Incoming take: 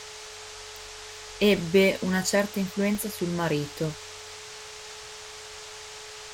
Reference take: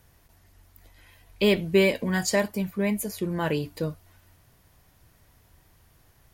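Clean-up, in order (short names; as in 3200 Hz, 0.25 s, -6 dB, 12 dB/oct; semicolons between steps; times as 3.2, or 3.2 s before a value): de-hum 428.1 Hz, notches 5; interpolate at 2.95, 1.1 ms; noise print and reduce 18 dB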